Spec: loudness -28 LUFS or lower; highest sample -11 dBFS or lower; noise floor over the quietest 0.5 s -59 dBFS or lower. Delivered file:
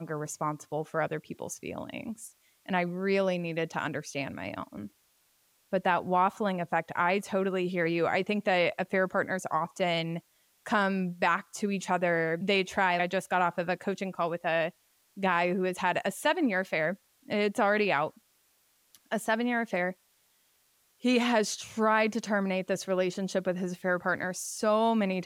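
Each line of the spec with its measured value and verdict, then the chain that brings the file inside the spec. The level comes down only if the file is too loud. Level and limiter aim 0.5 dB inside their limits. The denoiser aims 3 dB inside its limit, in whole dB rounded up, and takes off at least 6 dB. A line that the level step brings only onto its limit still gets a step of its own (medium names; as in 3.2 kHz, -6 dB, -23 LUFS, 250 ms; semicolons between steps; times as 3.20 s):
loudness -29.5 LUFS: pass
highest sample -13.5 dBFS: pass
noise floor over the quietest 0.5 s -69 dBFS: pass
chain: none needed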